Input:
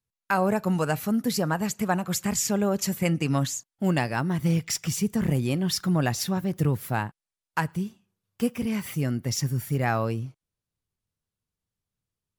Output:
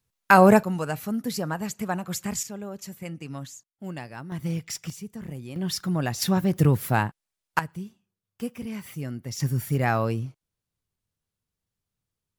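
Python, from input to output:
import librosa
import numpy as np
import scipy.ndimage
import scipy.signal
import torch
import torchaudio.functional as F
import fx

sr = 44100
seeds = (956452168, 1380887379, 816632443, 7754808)

y = fx.gain(x, sr, db=fx.steps((0.0, 9.0), (0.63, -3.5), (2.43, -12.0), (4.32, -5.5), (4.9, -12.5), (5.56, -2.5), (6.22, 4.5), (7.59, -6.5), (9.4, 1.5)))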